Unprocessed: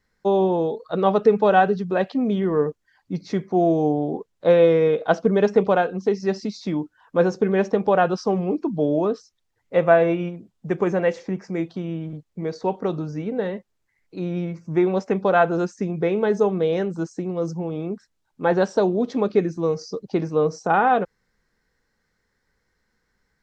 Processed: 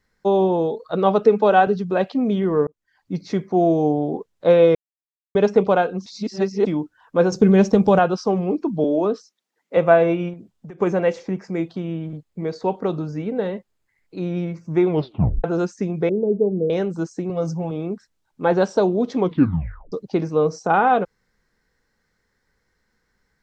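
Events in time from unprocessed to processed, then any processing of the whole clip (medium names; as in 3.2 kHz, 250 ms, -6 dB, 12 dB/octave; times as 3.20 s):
1.25–1.67 s: steep high-pass 190 Hz
2.67–3.14 s: fade in
4.75–5.35 s: mute
6.06–6.66 s: reverse
7.32–7.99 s: tone controls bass +12 dB, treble +11 dB
8.84–9.77 s: steep high-pass 180 Hz
10.33–10.81 s: compression 16:1, threshold -35 dBFS
11.42–14.20 s: band-stop 5.8 kHz
14.87 s: tape stop 0.57 s
16.09–16.70 s: inverse Chebyshev low-pass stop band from 1.7 kHz, stop band 60 dB
17.29–17.71 s: comb 7.3 ms, depth 71%
19.18 s: tape stop 0.74 s
whole clip: dynamic bell 1.8 kHz, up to -6 dB, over -49 dBFS, Q 7.2; trim +1.5 dB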